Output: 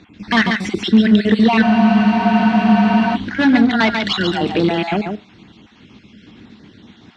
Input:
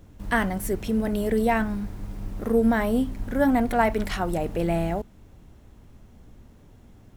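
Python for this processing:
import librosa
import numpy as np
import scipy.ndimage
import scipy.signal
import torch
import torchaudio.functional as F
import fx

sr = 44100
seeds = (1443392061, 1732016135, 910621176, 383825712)

p1 = fx.spec_dropout(x, sr, seeds[0], share_pct=40)
p2 = fx.peak_eq(p1, sr, hz=2900.0, db=12.0, octaves=2.2)
p3 = fx.rider(p2, sr, range_db=10, speed_s=0.5)
p4 = p2 + (p3 * librosa.db_to_amplitude(-1.5))
p5 = np.clip(p4, -10.0 ** (-11.5 / 20.0), 10.0 ** (-11.5 / 20.0))
p6 = fx.cabinet(p5, sr, low_hz=140.0, low_slope=12, high_hz=5500.0, hz=(210.0, 320.0, 570.0, 3800.0), db=(8, 6, -9, 5))
p7 = p6 + fx.echo_single(p6, sr, ms=141, db=-5.5, dry=0)
p8 = fx.rev_schroeder(p7, sr, rt60_s=0.34, comb_ms=27, drr_db=19.5)
p9 = fx.spec_freeze(p8, sr, seeds[1], at_s=1.65, hold_s=1.49)
y = p9 * librosa.db_to_amplitude(1.5)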